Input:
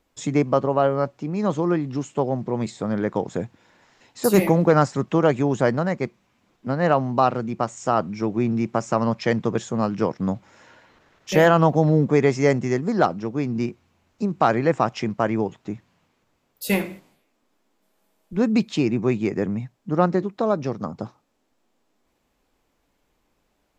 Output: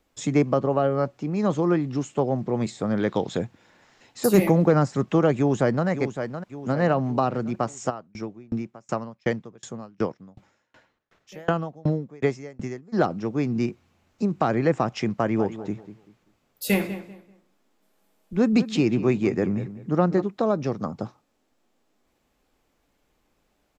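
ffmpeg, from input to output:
-filter_complex "[0:a]asettb=1/sr,asplit=3[a][b][c];[a]atrim=end=2.994[d];[b]atrim=start=2.99:end=3.39,asetpts=PTS-STARTPTS,afade=t=in:d=0.004:c=qsin,afade=t=out:st=0.396:d=0.004:c=qsin,equalizer=f=3.7k:t=o:w=0.78:g=13[e];[c]atrim=start=3.386[f];[d][e]acrossfade=d=0.004:c1=hsin:c2=qsin[g];[g][f]acrossfade=d=0.004:c1=qsin:c2=hsin,asplit=2[h][i];[i]afade=t=in:st=5.37:d=0.01,afade=t=out:st=5.87:d=0.01,aecho=0:1:560|1120|1680|2240|2800:0.316228|0.158114|0.0790569|0.0395285|0.0197642[j];[h][j]amix=inputs=2:normalize=0,asplit=3[k][l][m];[k]afade=t=out:st=7.89:d=0.02[n];[l]aeval=exprs='val(0)*pow(10,-33*if(lt(mod(2.7*n/s,1),2*abs(2.7)/1000),1-mod(2.7*n/s,1)/(2*abs(2.7)/1000),(mod(2.7*n/s,1)-2*abs(2.7)/1000)/(1-2*abs(2.7)/1000))/20)':c=same,afade=t=in:st=7.89:d=0.02,afade=t=out:st=12.92:d=0.02[o];[m]afade=t=in:st=12.92:d=0.02[p];[n][o][p]amix=inputs=3:normalize=0,asplit=3[q][r][s];[q]afade=t=out:st=15.35:d=0.02[t];[r]asplit=2[u][v];[v]adelay=194,lowpass=f=2.4k:p=1,volume=-13dB,asplit=2[w][x];[x]adelay=194,lowpass=f=2.4k:p=1,volume=0.27,asplit=2[y][z];[z]adelay=194,lowpass=f=2.4k:p=1,volume=0.27[aa];[u][w][y][aa]amix=inputs=4:normalize=0,afade=t=in:st=15.35:d=0.02,afade=t=out:st=20.2:d=0.02[ab];[s]afade=t=in:st=20.2:d=0.02[ac];[t][ab][ac]amix=inputs=3:normalize=0,bandreject=f=970:w=19,acrossover=split=430[ad][ae];[ae]acompressor=threshold=-22dB:ratio=4[af];[ad][af]amix=inputs=2:normalize=0"

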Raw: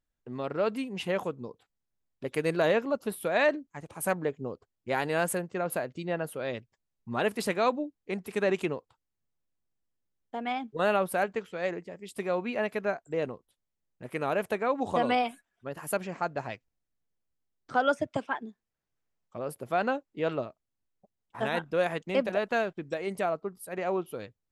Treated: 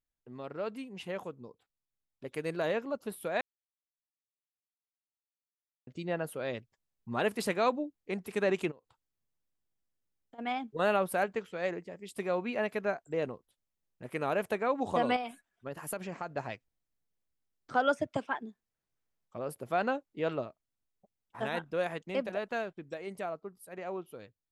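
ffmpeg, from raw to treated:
-filter_complex "[0:a]asplit=3[a][b][c];[a]afade=t=out:st=8.7:d=0.02[d];[b]acompressor=threshold=-49dB:ratio=10:attack=3.2:release=140:knee=1:detection=peak,afade=t=in:st=8.7:d=0.02,afade=t=out:st=10.38:d=0.02[e];[c]afade=t=in:st=10.38:d=0.02[f];[d][e][f]amix=inputs=3:normalize=0,asettb=1/sr,asplit=3[g][h][i];[g]atrim=end=15.164[j];[h]atrim=start=15.16:end=16.35,asetpts=PTS-STARTPTS,afade=t=in:d=0.004:c=qsin,afade=t=out:st=1.186:d=0.004:c=qsin,acompressor=threshold=-31dB:ratio=4:attack=3.2:release=140:knee=1:detection=peak[k];[i]atrim=start=16.346[l];[j][k]acrossfade=d=0.004:c1=hsin:c2=qsin[m];[m][l]acrossfade=d=0.004:c1=qsin:c2=hsin,asplit=3[n][o][p];[n]atrim=end=3.41,asetpts=PTS-STARTPTS,afade=t=out:st=3.406:d=0.004:c=hsin[q];[o]atrim=start=3.41:end=5.87,asetpts=PTS-STARTPTS,volume=0[r];[p]atrim=start=5.87,asetpts=PTS-STARTPTS,afade=t=in:d=0.004:c=hsin[s];[q][r][s]concat=n=3:v=0:a=1,dynaudnorm=f=430:g=17:m=6.5dB,volume=-8.5dB"

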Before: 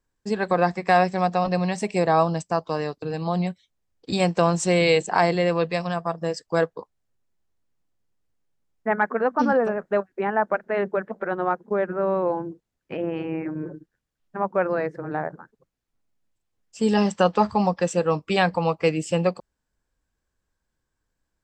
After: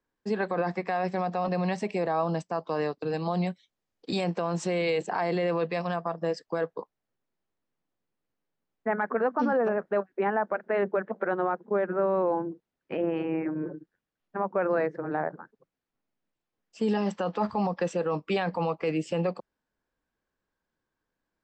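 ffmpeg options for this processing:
-filter_complex "[0:a]asettb=1/sr,asplit=3[a][b][c];[a]atrim=end=3.024[d];[b]atrim=start=3.02:end=4.24,asetpts=PTS-STARTPTS,afade=t=in:d=0.004:c=qsin,afade=t=out:st=1.216:d=0.004:c=qsin,highshelf=f=6.2k:g=12[e];[c]atrim=start=4.236[f];[d][e]acrossfade=d=0.004:c1=hsin:c2=qsin[g];[g][f]acrossfade=d=0.004:c1=qsin:c2=hsin,highshelf=f=3.8k:g=-7.5,alimiter=limit=-17.5dB:level=0:latency=1:release=24,acrossover=split=160 6500:gain=0.224 1 0.158[h][i][j];[h][i][j]amix=inputs=3:normalize=0"

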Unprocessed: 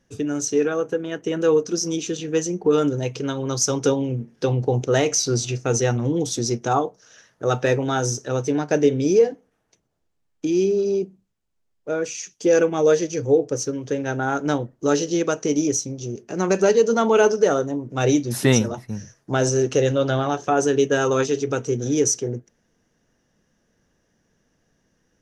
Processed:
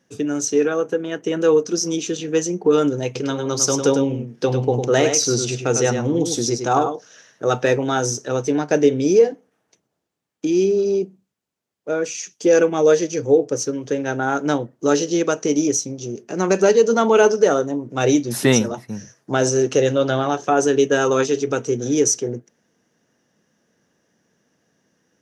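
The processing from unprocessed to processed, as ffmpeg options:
-filter_complex "[0:a]asettb=1/sr,asplit=3[a][b][c];[a]atrim=end=3.054[d];[b]atrim=start=3.05:end=7.49,asetpts=PTS-STARTPTS,afade=t=in:d=0.004:c=qsin,afade=t=out:st=4.436:d=0.004:c=qsin,aecho=1:1:102:0.447,atrim=end_sample=195804[e];[c]atrim=start=7.486[f];[d][e]acrossfade=d=0.004:c1=hsin:c2=qsin[g];[g][f]acrossfade=d=0.004:c1=qsin:c2=hsin,highpass=150,volume=2.5dB"

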